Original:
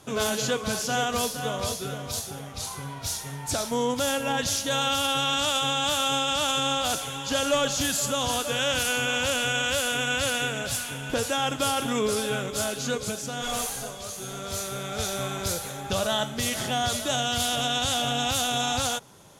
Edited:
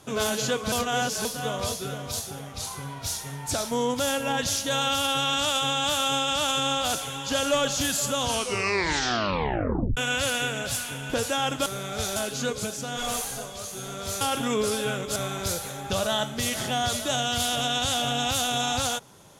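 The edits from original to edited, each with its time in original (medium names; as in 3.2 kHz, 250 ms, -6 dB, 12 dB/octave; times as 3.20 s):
0.72–1.25 s: reverse
8.24 s: tape stop 1.73 s
11.66–12.61 s: swap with 14.66–15.16 s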